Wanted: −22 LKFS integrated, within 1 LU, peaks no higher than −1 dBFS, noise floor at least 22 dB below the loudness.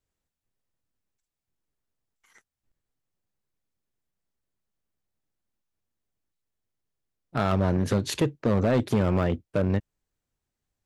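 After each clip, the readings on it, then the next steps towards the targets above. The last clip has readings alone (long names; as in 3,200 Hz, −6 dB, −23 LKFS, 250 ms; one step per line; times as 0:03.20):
share of clipped samples 0.9%; peaks flattened at −17.0 dBFS; integrated loudness −26.0 LKFS; sample peak −17.0 dBFS; target loudness −22.0 LKFS
→ clipped peaks rebuilt −17 dBFS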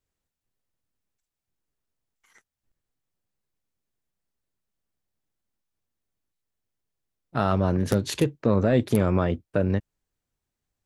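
share of clipped samples 0.0%; integrated loudness −24.5 LKFS; sample peak −8.0 dBFS; target loudness −22.0 LKFS
→ level +2.5 dB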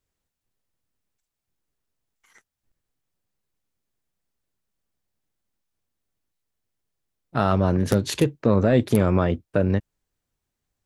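integrated loudness −22.0 LKFS; sample peak −5.5 dBFS; background noise floor −84 dBFS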